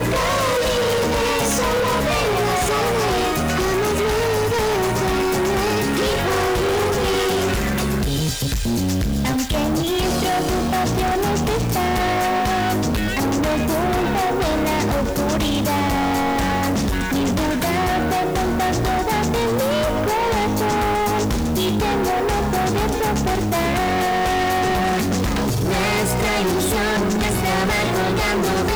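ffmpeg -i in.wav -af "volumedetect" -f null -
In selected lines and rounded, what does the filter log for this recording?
mean_volume: -19.4 dB
max_volume: -17.6 dB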